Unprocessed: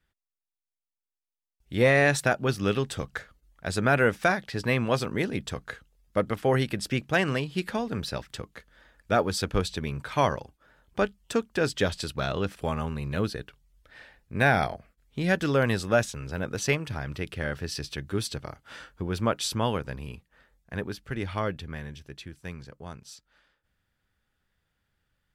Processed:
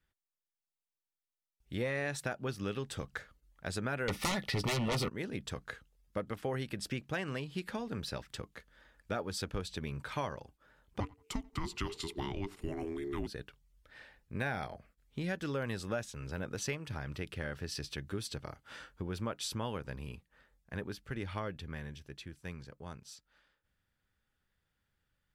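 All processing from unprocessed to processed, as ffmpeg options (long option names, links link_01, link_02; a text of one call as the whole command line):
ffmpeg -i in.wav -filter_complex "[0:a]asettb=1/sr,asplit=3[link_01][link_02][link_03];[link_01]atrim=end=4.084[link_04];[link_02]atrim=start=4.08:end=5.09,asetpts=PTS-STARTPTS,afade=type=in:duration=0.004:curve=qsin,afade=type=out:start_time=1.006:duration=0.004:curve=qsin,equalizer=frequency=7200:width_type=o:width=0.39:gain=-7,aeval=exprs='0.282*sin(PI/2*5.01*val(0)/0.282)':channel_layout=same,asuperstop=centerf=1600:order=20:qfactor=6.8[link_05];[link_03]atrim=start=5.086[link_06];[link_04][link_05]acrossfade=duration=0.004:curve1=hsin:curve2=qsin[link_07];[link_07][link_06]acrossfade=duration=0.004:curve1=qsin:curve2=hsin,asettb=1/sr,asplit=3[link_08][link_09][link_10];[link_08]atrim=end=11.004[link_11];[link_09]atrim=start=11:end=13.27,asetpts=PTS-STARTPTS,afade=type=in:duration=0.004:curve=qsin,afade=type=out:start_time=2.266:duration=0.004:curve=qsin,asplit=2[link_12][link_13];[link_13]adelay=87,lowpass=frequency=3300:poles=1,volume=-23dB,asplit=2[link_14][link_15];[link_15]adelay=87,lowpass=frequency=3300:poles=1,volume=0.23[link_16];[link_12][link_14][link_16]amix=inputs=3:normalize=0,atrim=end_sample=100107,afreqshift=-490[link_17];[link_10]atrim=start=13.266[link_18];[link_11][link_17]acrossfade=duration=0.004:curve1=hsin:curve2=qsin[link_19];[link_19][link_18]acrossfade=duration=0.004:curve1=qsin:curve2=hsin,bandreject=frequency=690:width=17,acompressor=threshold=-30dB:ratio=3,volume=-5dB" out.wav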